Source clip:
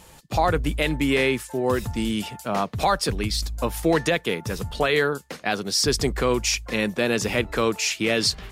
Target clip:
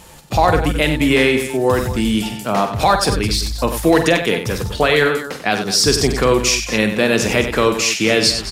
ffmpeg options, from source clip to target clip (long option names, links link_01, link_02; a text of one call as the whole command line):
ffmpeg -i in.wav -af "aecho=1:1:46|94|215:0.316|0.355|0.211,volume=6.5dB" out.wav